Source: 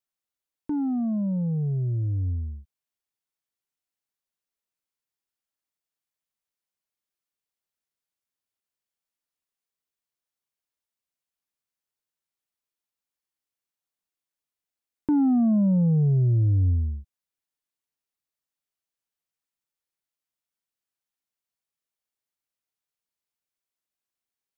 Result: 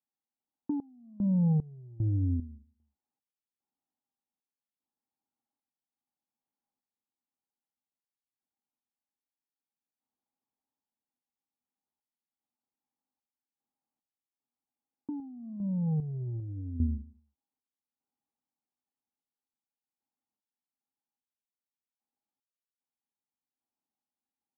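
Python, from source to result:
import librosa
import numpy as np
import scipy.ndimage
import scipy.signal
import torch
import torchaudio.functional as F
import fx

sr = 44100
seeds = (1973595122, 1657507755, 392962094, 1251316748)

p1 = scipy.signal.sosfilt(scipy.signal.butter(2, 58.0, 'highpass', fs=sr, output='sos'), x)
p2 = fx.small_body(p1, sr, hz=(250.0, 810.0), ring_ms=45, db=15)
p3 = p2 + fx.echo_feedback(p2, sr, ms=152, feedback_pct=18, wet_db=-21.5, dry=0)
p4 = fx.over_compress(p3, sr, threshold_db=-21.0, ratio=-1.0)
p5 = fx.tremolo_random(p4, sr, seeds[0], hz=2.5, depth_pct=95)
p6 = scipy.signal.sosfilt(scipy.signal.butter(4, 1200.0, 'lowpass', fs=sr, output='sos'), p5)
y = p6 * 10.0 ** (-7.0 / 20.0)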